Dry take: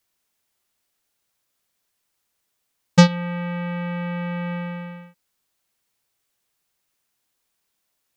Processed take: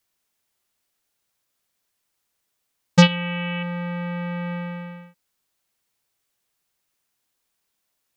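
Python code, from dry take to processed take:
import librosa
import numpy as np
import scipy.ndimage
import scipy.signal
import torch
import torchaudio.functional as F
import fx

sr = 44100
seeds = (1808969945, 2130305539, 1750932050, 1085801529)

y = fx.lowpass_res(x, sr, hz=2900.0, q=5.7, at=(3.02, 3.63))
y = y * librosa.db_to_amplitude(-1.0)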